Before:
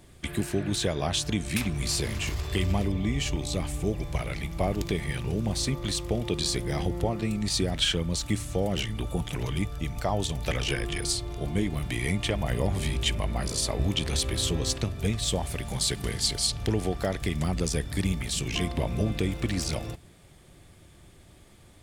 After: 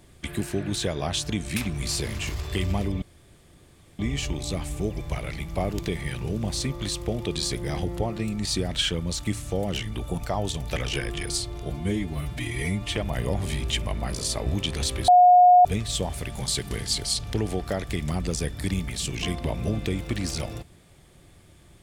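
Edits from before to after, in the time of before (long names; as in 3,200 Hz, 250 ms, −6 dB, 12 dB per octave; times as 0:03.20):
0:03.02: splice in room tone 0.97 s
0:09.21–0:09.93: remove
0:11.45–0:12.29: time-stretch 1.5×
0:14.41–0:14.98: beep over 720 Hz −10.5 dBFS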